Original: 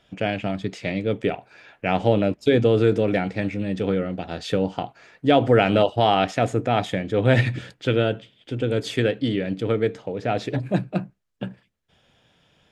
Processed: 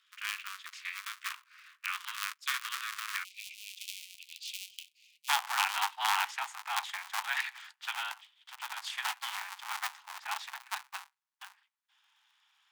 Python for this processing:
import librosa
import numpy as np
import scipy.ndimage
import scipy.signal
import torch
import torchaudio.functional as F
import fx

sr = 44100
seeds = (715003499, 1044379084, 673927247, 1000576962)

y = fx.cycle_switch(x, sr, every=2, mode='inverted')
y = fx.steep_highpass(y, sr, hz=fx.steps((0.0, 1100.0), (3.23, 2400.0), (5.28, 840.0)), slope=72)
y = F.gain(torch.from_numpy(y), -7.0).numpy()